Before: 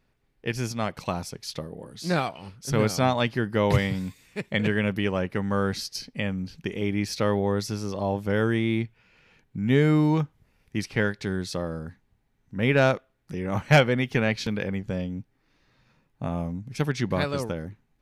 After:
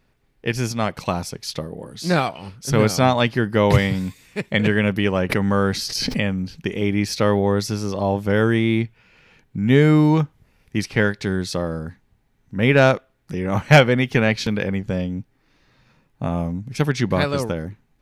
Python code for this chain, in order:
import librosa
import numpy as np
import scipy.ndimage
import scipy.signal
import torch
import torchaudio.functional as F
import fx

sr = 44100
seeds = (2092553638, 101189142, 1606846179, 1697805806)

y = fx.pre_swell(x, sr, db_per_s=21.0, at=(5.29, 6.35), fade=0.02)
y = y * librosa.db_to_amplitude(6.0)